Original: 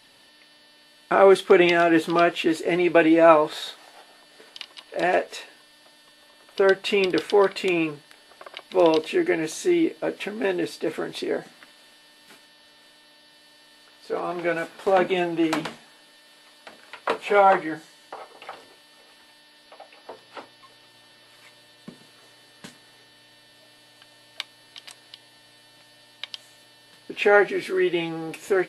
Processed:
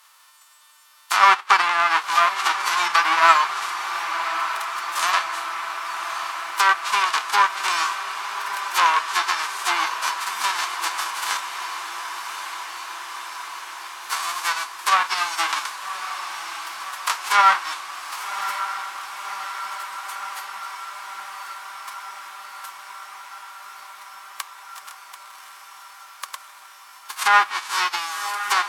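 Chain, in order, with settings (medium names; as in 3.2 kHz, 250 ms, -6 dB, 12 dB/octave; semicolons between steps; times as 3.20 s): formants flattened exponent 0.1; low-pass that closes with the level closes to 2.5 kHz, closed at -14.5 dBFS; resonant high-pass 1.1 kHz, resonance Q 4.9; echo that smears into a reverb 1115 ms, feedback 75%, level -9.5 dB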